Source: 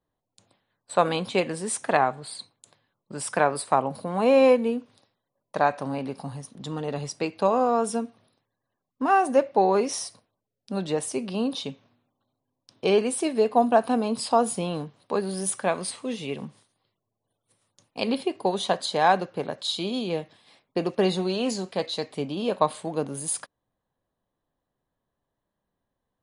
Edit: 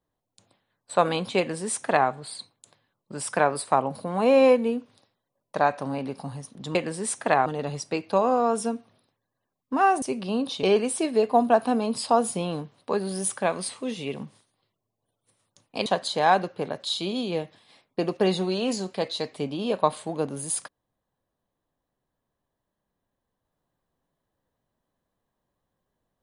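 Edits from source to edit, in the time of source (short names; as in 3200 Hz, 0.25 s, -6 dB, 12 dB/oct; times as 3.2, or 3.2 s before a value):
1.38–2.09 copy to 6.75
9.31–11.08 cut
11.69–12.85 cut
18.08–18.64 cut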